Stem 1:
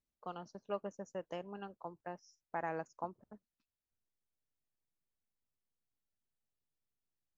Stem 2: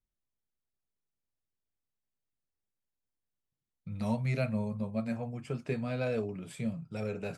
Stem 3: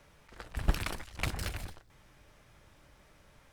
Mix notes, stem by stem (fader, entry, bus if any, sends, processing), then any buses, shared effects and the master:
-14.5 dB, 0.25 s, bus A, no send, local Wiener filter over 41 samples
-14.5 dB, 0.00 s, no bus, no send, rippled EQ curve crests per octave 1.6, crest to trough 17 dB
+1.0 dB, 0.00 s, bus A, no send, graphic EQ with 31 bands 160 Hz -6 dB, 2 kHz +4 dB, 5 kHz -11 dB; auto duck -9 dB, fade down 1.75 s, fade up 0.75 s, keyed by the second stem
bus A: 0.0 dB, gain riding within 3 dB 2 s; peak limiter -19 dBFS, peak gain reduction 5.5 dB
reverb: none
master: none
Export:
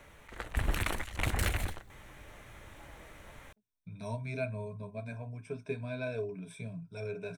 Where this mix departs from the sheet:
stem 1 -14.5 dB -> -23.0 dB; stem 2 -14.5 dB -> -7.5 dB; stem 3 +1.0 dB -> +7.0 dB

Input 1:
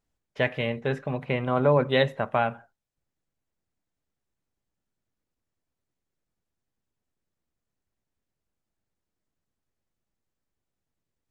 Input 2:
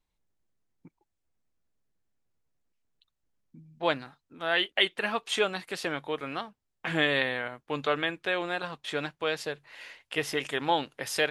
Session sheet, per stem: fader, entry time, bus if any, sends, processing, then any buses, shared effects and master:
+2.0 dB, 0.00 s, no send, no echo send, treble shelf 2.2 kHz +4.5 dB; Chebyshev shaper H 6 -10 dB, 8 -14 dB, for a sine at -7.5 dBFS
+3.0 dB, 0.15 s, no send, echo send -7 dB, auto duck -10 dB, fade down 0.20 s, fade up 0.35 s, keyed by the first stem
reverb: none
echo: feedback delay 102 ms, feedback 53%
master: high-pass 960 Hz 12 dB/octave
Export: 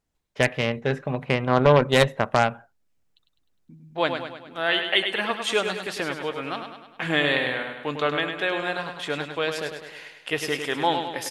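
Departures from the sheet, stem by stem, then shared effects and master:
stem 1: missing treble shelf 2.2 kHz +4.5 dB; master: missing high-pass 960 Hz 12 dB/octave

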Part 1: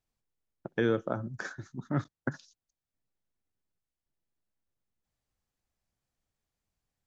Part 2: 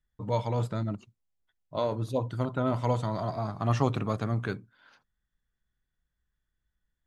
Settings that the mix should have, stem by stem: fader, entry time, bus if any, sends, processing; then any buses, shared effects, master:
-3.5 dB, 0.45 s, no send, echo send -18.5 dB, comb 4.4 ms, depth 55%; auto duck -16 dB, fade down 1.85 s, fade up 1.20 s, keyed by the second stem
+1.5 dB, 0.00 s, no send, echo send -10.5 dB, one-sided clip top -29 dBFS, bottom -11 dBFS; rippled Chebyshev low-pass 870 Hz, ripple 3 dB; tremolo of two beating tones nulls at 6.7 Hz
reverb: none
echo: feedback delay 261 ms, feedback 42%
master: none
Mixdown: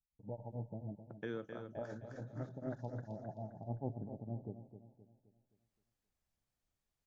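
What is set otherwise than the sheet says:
stem 1: missing comb 4.4 ms, depth 55%; stem 2 +1.5 dB -> -10.0 dB

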